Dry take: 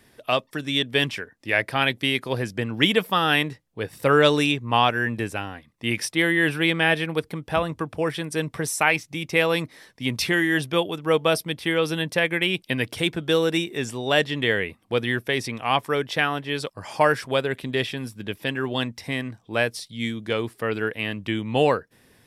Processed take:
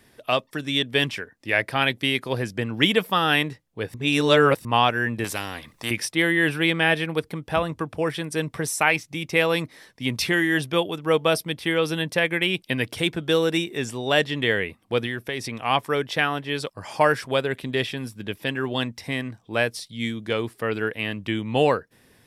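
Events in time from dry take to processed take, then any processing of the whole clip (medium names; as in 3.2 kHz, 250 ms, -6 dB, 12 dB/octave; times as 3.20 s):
3.94–4.65 s: reverse
5.24–5.91 s: spectrum-flattening compressor 2:1
15.06–15.59 s: compression 2.5:1, threshold -26 dBFS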